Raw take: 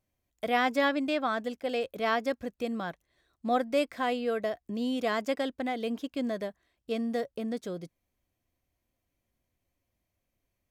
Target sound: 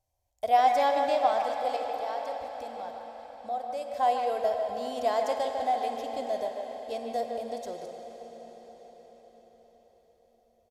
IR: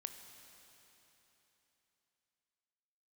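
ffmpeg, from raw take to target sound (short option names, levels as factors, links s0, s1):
-filter_complex "[0:a]firequalizer=gain_entry='entry(100,0);entry(160,-20);entry(780,7);entry(1200,-11);entry(1900,-12);entry(5400,0);entry(12000,-3)':delay=0.05:min_phase=1,asettb=1/sr,asplit=3[s0][s1][s2];[s0]atrim=end=1.764[s3];[s1]atrim=start=1.76:end=3.94,asetpts=PTS-STARTPTS,afade=t=in:d=0.004:c=qsin,afade=t=out:st=2.176:d=0.004:c=qsin,acompressor=threshold=0.002:ratio=1.5[s4];[s2]atrim=start=3.936[s5];[s3][s4]acrossfade=d=0.004:c1=hsin:c2=qsin[s6];[s6][s5]acrossfade=d=0.004:c1=qsin:c2=hsin,asplit=2[s7][s8];[s8]adelay=150,highpass=300,lowpass=3400,asoftclip=type=hard:threshold=0.0708,volume=0.501[s9];[s7][s9]amix=inputs=2:normalize=0[s10];[1:a]atrim=start_sample=2205,asetrate=25578,aresample=44100[s11];[s10][s11]afir=irnorm=-1:irlink=0,volume=1.68"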